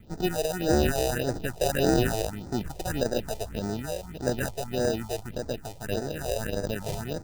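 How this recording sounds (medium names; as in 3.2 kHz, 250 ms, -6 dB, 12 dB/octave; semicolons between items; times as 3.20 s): aliases and images of a low sample rate 1.1 kHz, jitter 0%; phasing stages 4, 1.7 Hz, lowest notch 230–2900 Hz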